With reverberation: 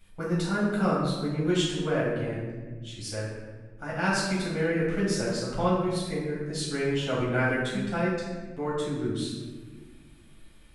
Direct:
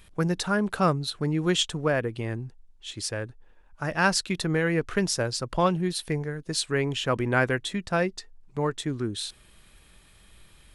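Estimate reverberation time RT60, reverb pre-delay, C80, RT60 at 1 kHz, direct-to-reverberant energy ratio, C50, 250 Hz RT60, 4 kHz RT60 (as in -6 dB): 1.4 s, 7 ms, 3.0 dB, 1.1 s, -8.0 dB, 0.5 dB, 2.4 s, 0.85 s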